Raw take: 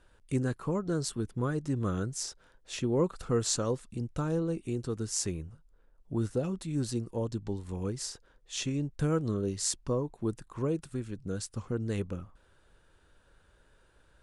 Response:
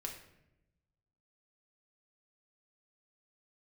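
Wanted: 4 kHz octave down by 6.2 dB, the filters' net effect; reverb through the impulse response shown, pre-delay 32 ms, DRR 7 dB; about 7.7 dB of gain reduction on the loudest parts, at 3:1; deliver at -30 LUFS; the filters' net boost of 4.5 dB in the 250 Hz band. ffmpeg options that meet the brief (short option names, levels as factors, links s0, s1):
-filter_complex "[0:a]equalizer=f=250:t=o:g=6,equalizer=f=4000:t=o:g=-8.5,acompressor=threshold=0.0251:ratio=3,asplit=2[s0][s1];[1:a]atrim=start_sample=2205,adelay=32[s2];[s1][s2]afir=irnorm=-1:irlink=0,volume=0.531[s3];[s0][s3]amix=inputs=2:normalize=0,volume=1.88"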